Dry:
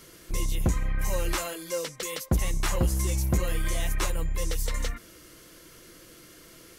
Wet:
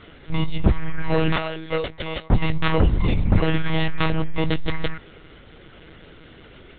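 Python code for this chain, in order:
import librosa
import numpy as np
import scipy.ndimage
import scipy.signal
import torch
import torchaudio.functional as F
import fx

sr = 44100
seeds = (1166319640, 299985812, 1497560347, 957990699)

y = fx.lpc_monotone(x, sr, seeds[0], pitch_hz=160.0, order=10)
y = y * 10.0 ** (7.5 / 20.0)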